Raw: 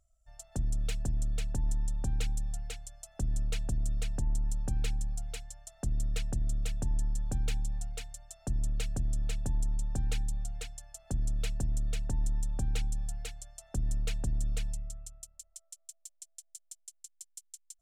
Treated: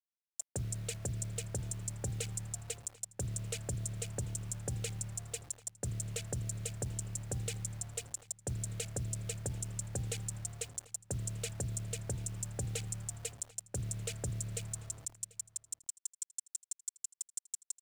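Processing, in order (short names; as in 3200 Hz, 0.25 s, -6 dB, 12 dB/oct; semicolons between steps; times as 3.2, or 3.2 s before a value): Wiener smoothing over 41 samples; HPF 86 Hz 24 dB/oct; expander -58 dBFS; graphic EQ 250/500/1000/4000/8000 Hz -12/+8/-10/-3/+8 dB; limiter -29 dBFS, peak gain reduction 7.5 dB; requantised 10-bit, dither none; on a send: echo 0.74 s -21.5 dB; on the sum: gain +4.5 dB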